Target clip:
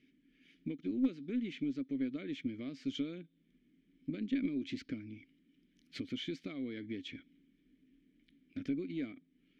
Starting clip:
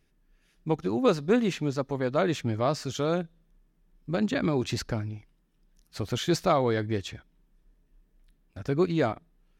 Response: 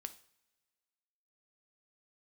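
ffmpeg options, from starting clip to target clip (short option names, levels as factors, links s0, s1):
-filter_complex "[0:a]acompressor=threshold=0.00891:ratio=6,asplit=3[s0][s1][s2];[s0]bandpass=f=270:t=q:w=8,volume=1[s3];[s1]bandpass=f=2290:t=q:w=8,volume=0.501[s4];[s2]bandpass=f=3010:t=q:w=8,volume=0.355[s5];[s3][s4][s5]amix=inputs=3:normalize=0,aeval=exprs='0.0119*(cos(1*acos(clip(val(0)/0.0119,-1,1)))-cos(1*PI/2))+0.000668*(cos(2*acos(clip(val(0)/0.0119,-1,1)))-cos(2*PI/2))':c=same,volume=5.96"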